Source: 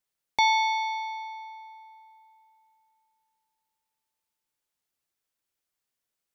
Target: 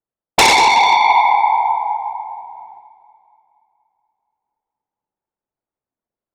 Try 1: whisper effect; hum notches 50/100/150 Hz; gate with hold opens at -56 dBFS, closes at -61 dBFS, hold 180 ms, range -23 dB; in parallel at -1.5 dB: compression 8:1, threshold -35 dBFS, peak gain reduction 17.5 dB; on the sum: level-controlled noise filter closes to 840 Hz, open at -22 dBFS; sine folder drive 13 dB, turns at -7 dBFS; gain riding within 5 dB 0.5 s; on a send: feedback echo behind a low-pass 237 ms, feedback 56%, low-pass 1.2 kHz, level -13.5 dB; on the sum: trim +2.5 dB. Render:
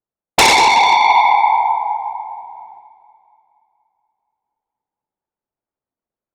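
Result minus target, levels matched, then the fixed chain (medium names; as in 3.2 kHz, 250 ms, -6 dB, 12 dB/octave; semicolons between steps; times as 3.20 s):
compression: peak gain reduction -5 dB
whisper effect; hum notches 50/100/150 Hz; gate with hold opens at -56 dBFS, closes at -61 dBFS, hold 180 ms, range -23 dB; in parallel at -1.5 dB: compression 8:1, threshold -41 dBFS, peak gain reduction 23 dB; on the sum: level-controlled noise filter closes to 840 Hz, open at -22 dBFS; sine folder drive 13 dB, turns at -7 dBFS; gain riding within 5 dB 0.5 s; on a send: feedback echo behind a low-pass 237 ms, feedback 56%, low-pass 1.2 kHz, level -13.5 dB; on the sum: trim +2.5 dB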